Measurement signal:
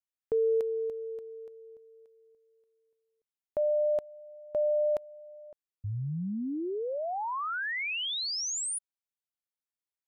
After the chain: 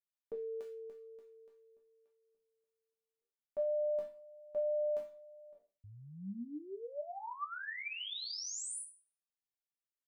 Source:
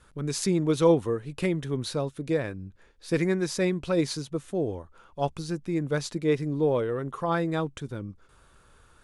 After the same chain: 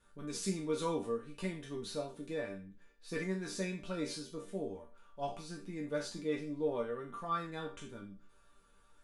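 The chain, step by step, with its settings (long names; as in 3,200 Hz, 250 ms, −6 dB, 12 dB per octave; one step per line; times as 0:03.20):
peak hold with a decay on every bin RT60 0.38 s
resonators tuned to a chord G3 minor, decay 0.21 s
level +3.5 dB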